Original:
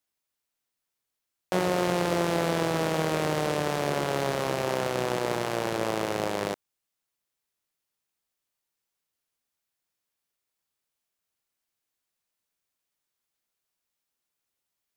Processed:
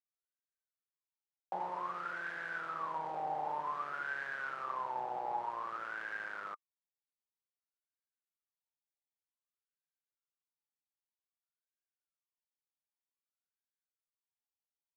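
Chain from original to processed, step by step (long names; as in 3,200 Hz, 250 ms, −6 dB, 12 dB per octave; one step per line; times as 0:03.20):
parametric band 690 Hz −7.5 dB 2.7 octaves
leveller curve on the samples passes 3
LFO wah 0.53 Hz 800–1,600 Hz, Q 18
level +5 dB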